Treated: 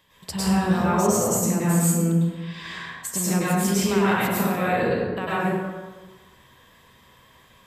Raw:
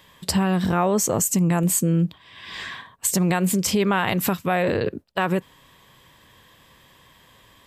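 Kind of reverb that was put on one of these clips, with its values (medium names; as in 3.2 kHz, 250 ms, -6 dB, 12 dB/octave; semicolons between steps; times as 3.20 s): plate-style reverb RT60 1.3 s, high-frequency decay 0.55×, pre-delay 90 ms, DRR -9.5 dB; trim -10 dB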